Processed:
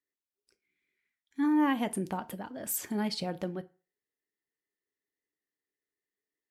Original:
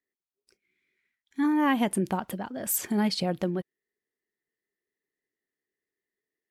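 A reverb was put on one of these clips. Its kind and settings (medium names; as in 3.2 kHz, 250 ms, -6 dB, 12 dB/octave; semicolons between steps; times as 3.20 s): FDN reverb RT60 0.36 s, low-frequency decay 0.85×, high-frequency decay 0.75×, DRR 11 dB; trim -5.5 dB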